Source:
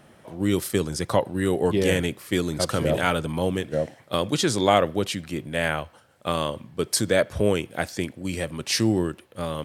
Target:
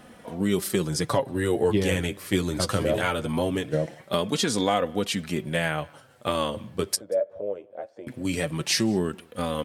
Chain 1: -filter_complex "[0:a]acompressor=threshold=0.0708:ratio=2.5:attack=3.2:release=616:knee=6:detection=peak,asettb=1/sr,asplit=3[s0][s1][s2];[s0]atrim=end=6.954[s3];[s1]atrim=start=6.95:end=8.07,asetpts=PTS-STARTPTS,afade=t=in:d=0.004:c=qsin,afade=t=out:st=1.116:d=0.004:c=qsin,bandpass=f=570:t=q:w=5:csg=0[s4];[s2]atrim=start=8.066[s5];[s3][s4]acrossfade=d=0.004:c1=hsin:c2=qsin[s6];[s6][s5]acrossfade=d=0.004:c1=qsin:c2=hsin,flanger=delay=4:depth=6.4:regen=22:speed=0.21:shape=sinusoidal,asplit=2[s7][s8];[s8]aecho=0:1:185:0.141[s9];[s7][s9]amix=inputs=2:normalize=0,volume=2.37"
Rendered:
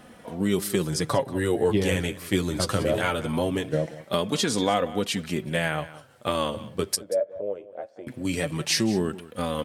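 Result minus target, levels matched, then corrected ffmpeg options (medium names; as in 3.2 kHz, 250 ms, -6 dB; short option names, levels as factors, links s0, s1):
echo-to-direct +10.5 dB
-filter_complex "[0:a]acompressor=threshold=0.0708:ratio=2.5:attack=3.2:release=616:knee=6:detection=peak,asettb=1/sr,asplit=3[s0][s1][s2];[s0]atrim=end=6.954[s3];[s1]atrim=start=6.95:end=8.07,asetpts=PTS-STARTPTS,afade=t=in:d=0.004:c=qsin,afade=t=out:st=1.116:d=0.004:c=qsin,bandpass=f=570:t=q:w=5:csg=0[s4];[s2]atrim=start=8.066[s5];[s3][s4]acrossfade=d=0.004:c1=hsin:c2=qsin[s6];[s6][s5]acrossfade=d=0.004:c1=qsin:c2=hsin,flanger=delay=4:depth=6.4:regen=22:speed=0.21:shape=sinusoidal,asplit=2[s7][s8];[s8]aecho=0:1:185:0.0422[s9];[s7][s9]amix=inputs=2:normalize=0,volume=2.37"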